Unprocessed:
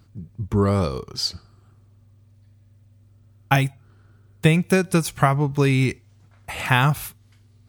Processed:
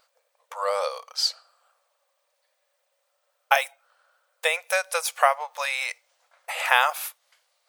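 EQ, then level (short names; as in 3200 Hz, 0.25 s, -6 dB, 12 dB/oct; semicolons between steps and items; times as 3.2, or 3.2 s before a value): brick-wall FIR high-pass 480 Hz; +1.0 dB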